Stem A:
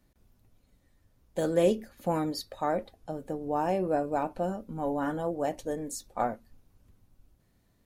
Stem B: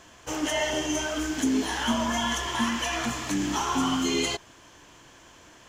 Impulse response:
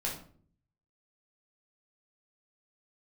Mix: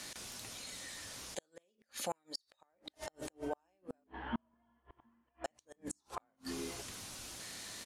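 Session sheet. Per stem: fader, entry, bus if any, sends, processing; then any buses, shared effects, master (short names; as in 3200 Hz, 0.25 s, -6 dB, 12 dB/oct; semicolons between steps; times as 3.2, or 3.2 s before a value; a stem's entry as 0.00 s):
-10.0 dB, 0.00 s, muted 4.04–5.44, no send, weighting filter ITU-R 468; fast leveller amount 70%
-4.0 dB, 2.45 s, no send, Gaussian blur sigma 3.7 samples; auto duck -13 dB, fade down 0.20 s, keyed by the first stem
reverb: off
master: low shelf 420 Hz +3 dB; flipped gate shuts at -26 dBFS, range -41 dB; mismatched tape noise reduction decoder only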